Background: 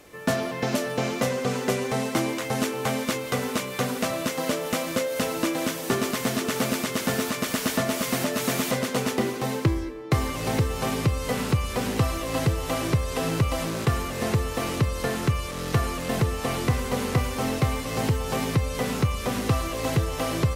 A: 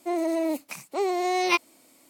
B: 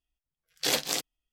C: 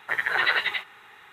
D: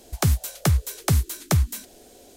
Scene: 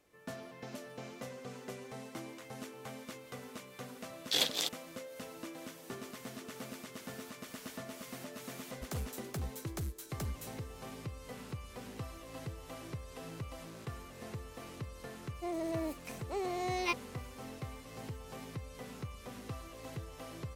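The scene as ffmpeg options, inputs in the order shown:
ffmpeg -i bed.wav -i cue0.wav -i cue1.wav -i cue2.wav -i cue3.wav -filter_complex "[0:a]volume=-20dB[link_01];[2:a]equalizer=frequency=3500:width_type=o:width=0.41:gain=10[link_02];[4:a]asoftclip=type=tanh:threshold=-20dB[link_03];[link_02]atrim=end=1.32,asetpts=PTS-STARTPTS,volume=-7.5dB,afade=type=in:duration=0.004:curve=hsin,afade=type=out:start_time=1.316:duration=0.004:curve=hsin,adelay=3680[link_04];[link_03]atrim=end=2.36,asetpts=PTS-STARTPTS,volume=-14.5dB,afade=type=in:duration=0.004:curve=hsin,afade=type=out:start_time=2.356:duration=0.004:curve=hsin,adelay=8690[link_05];[1:a]atrim=end=2.09,asetpts=PTS-STARTPTS,volume=-11dB,afade=type=in:duration=0.004:curve=hsin,afade=type=out:start_time=2.086:duration=0.004:curve=hsin,adelay=15360[link_06];[link_01][link_04][link_05][link_06]amix=inputs=4:normalize=0" out.wav

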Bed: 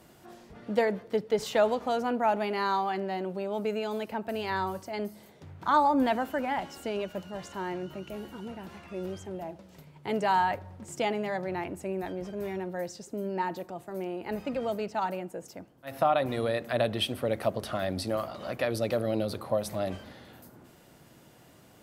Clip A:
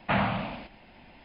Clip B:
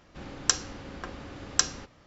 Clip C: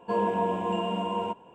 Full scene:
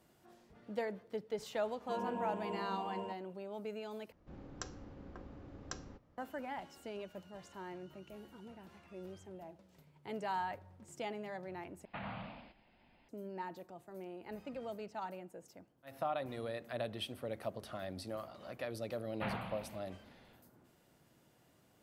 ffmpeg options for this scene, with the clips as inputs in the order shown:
ffmpeg -i bed.wav -i cue0.wav -i cue1.wav -i cue2.wav -filter_complex "[1:a]asplit=2[link_01][link_02];[0:a]volume=-12.5dB[link_03];[2:a]tiltshelf=frequency=1300:gain=8.5[link_04];[link_01]alimiter=limit=-19dB:level=0:latency=1:release=113[link_05];[link_03]asplit=3[link_06][link_07][link_08];[link_06]atrim=end=4.124[link_09];[link_04]atrim=end=2.06,asetpts=PTS-STARTPTS,volume=-16.5dB[link_10];[link_07]atrim=start=6.176:end=11.854[link_11];[link_05]atrim=end=1.24,asetpts=PTS-STARTPTS,volume=-15dB[link_12];[link_08]atrim=start=13.086[link_13];[3:a]atrim=end=1.54,asetpts=PTS-STARTPTS,volume=-14dB,afade=type=in:duration=0.004:curve=hsin,afade=type=out:start_time=1.536:duration=0.004:curve=hsin,adelay=1800[link_14];[link_02]atrim=end=1.24,asetpts=PTS-STARTPTS,volume=-14.5dB,afade=type=in:duration=0.004:curve=hsin,afade=type=out:start_time=1.236:duration=0.004:curve=hsin,adelay=19120[link_15];[link_09][link_10]acrossfade=duration=0.004:curve1=hsin:curve2=hsin[link_16];[link_16][link_11]acrossfade=duration=0.004:curve1=hsin:curve2=hsin[link_17];[link_17][link_12]acrossfade=duration=0.004:curve1=hsin:curve2=hsin[link_18];[link_18][link_13]acrossfade=duration=0.004:curve1=hsin:curve2=hsin[link_19];[link_19][link_14][link_15]amix=inputs=3:normalize=0" out.wav

